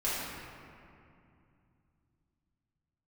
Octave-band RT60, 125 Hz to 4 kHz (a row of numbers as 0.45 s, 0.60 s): 4.2 s, 3.6 s, 2.6 s, 2.5 s, 2.2 s, 1.4 s